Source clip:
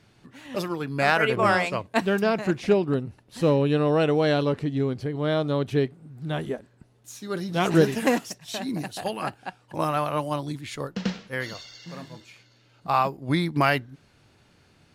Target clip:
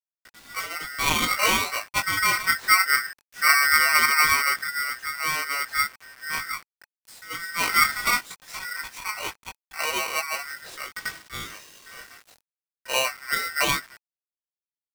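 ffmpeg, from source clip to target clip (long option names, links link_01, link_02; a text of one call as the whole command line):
ffmpeg -i in.wav -filter_complex "[0:a]flanger=delay=18:depth=3.5:speed=0.2,acrusher=bits=7:mix=0:aa=0.000001,asettb=1/sr,asplit=3[link_01][link_02][link_03];[link_01]atrim=end=2.174[link_04];[link_02]atrim=start=2.17:end=4.64,asetpts=PTS-STARTPTS,afade=type=in:duration=0.004:curve=qsin,afade=type=out:start_time=2.466:duration=0.004:curve=qsin,lowshelf=frequency=240:gain=8.5[link_05];[link_03]atrim=start=4.636[link_06];[link_04][link_05]acrossfade=duration=0.004:curve1=hsin:curve2=qsin[link_07];[link_07][link_06]acrossfade=duration=0.004:curve1=qsin:curve2=hsin,bandreject=frequency=830:width=12,adynamicequalizer=threshold=0.0178:dfrequency=590:dqfactor=0.78:tfrequency=590:tqfactor=0.78:attack=5:release=100:ratio=0.375:range=2.5:mode=boostabove:tftype=bell,aeval=exprs='val(0)*sgn(sin(2*PI*1700*n/s))':channel_layout=same,volume=-1.5dB" out.wav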